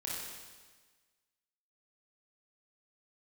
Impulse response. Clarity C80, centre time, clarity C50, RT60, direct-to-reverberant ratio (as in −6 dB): 1.0 dB, 98 ms, −2.0 dB, 1.4 s, −5.5 dB